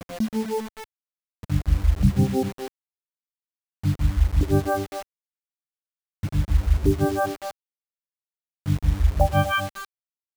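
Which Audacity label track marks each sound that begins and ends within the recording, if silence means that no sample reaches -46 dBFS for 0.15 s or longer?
1.430000	2.680000	sound
3.840000	5.020000	sound
6.230000	7.510000	sound
8.660000	9.850000	sound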